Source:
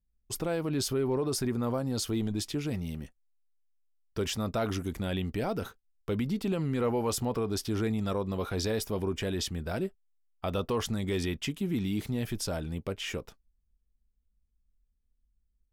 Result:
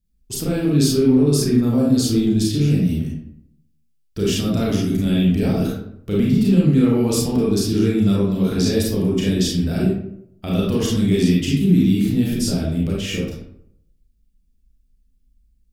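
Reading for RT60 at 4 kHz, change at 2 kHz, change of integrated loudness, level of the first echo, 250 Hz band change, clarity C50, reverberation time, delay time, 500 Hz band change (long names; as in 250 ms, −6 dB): 0.40 s, +7.0 dB, +13.5 dB, no echo audible, +16.0 dB, 0.0 dB, 0.70 s, no echo audible, +9.5 dB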